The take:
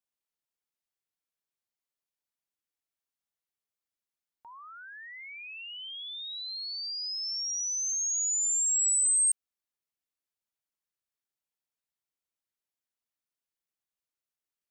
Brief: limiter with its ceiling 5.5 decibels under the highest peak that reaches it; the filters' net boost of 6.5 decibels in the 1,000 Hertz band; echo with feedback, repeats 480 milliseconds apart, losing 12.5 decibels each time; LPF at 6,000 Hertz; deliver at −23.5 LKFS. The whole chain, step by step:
low-pass filter 6,000 Hz
parametric band 1,000 Hz +8 dB
brickwall limiter −34 dBFS
repeating echo 480 ms, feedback 24%, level −12.5 dB
level +12 dB

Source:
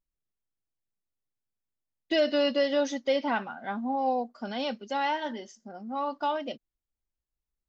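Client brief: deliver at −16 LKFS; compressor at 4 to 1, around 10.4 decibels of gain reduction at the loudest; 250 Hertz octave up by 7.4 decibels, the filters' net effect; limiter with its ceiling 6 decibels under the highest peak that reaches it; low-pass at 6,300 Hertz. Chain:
low-pass filter 6,300 Hz
parametric band 250 Hz +8.5 dB
downward compressor 4 to 1, threshold −31 dBFS
level +19.5 dB
brickwall limiter −7 dBFS

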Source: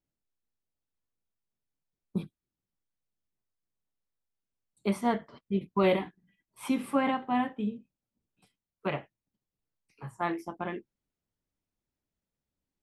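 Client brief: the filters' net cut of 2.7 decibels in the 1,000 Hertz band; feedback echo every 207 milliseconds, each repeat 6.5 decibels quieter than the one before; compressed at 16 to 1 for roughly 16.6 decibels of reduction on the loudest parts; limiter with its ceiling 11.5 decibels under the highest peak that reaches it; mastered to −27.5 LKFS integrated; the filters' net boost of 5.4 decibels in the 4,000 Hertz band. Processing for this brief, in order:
parametric band 1,000 Hz −4 dB
parametric band 4,000 Hz +8 dB
downward compressor 16 to 1, threshold −38 dBFS
brickwall limiter −37 dBFS
repeating echo 207 ms, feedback 47%, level −6.5 dB
level +21.5 dB

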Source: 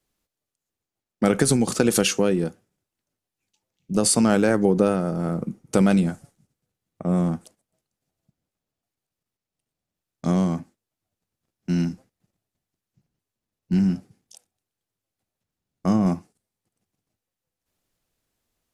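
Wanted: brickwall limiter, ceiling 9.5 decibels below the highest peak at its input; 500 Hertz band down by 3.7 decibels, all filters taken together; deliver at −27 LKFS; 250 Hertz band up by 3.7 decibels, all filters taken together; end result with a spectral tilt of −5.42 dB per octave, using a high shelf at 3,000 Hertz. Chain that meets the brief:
parametric band 250 Hz +6.5 dB
parametric band 500 Hz −7 dB
high-shelf EQ 3,000 Hz +5 dB
level −4.5 dB
brickwall limiter −16.5 dBFS

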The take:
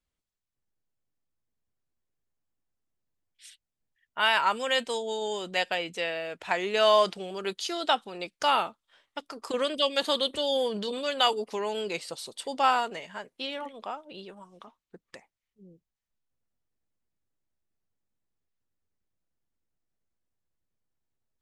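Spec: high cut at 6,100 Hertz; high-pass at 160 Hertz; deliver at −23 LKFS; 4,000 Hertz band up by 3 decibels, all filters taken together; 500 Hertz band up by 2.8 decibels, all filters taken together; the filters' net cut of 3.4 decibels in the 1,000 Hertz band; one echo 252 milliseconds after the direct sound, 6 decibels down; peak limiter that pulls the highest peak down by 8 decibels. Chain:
high-pass filter 160 Hz
low-pass filter 6,100 Hz
parametric band 500 Hz +5.5 dB
parametric band 1,000 Hz −6.5 dB
parametric band 4,000 Hz +5 dB
brickwall limiter −17.5 dBFS
single-tap delay 252 ms −6 dB
level +6 dB

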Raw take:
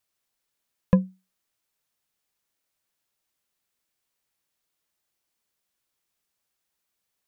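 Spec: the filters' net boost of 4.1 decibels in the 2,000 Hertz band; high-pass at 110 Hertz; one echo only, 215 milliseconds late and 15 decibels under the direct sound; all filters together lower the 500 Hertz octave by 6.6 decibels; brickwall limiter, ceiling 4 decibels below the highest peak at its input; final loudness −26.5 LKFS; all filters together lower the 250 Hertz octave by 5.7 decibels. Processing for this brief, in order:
high-pass filter 110 Hz
parametric band 250 Hz −8 dB
parametric band 500 Hz −5.5 dB
parametric band 2,000 Hz +5.5 dB
brickwall limiter −14.5 dBFS
single-tap delay 215 ms −15 dB
level +8.5 dB

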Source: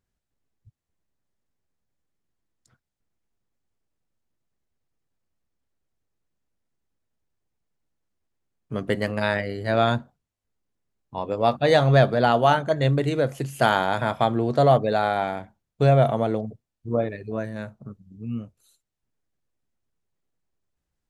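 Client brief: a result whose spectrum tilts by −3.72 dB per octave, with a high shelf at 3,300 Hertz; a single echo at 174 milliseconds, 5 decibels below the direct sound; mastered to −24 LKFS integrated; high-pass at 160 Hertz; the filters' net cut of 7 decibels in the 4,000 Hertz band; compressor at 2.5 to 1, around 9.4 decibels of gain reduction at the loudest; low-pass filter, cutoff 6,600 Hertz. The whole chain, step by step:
high-pass filter 160 Hz
low-pass filter 6,600 Hz
high-shelf EQ 3,300 Hz −6 dB
parametric band 4,000 Hz −4.5 dB
downward compressor 2.5 to 1, threshold −28 dBFS
single-tap delay 174 ms −5 dB
level +6 dB

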